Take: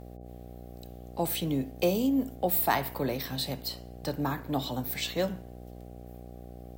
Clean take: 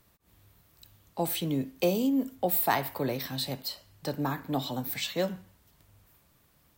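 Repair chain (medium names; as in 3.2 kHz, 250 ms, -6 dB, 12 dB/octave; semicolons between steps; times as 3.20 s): de-hum 60.7 Hz, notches 13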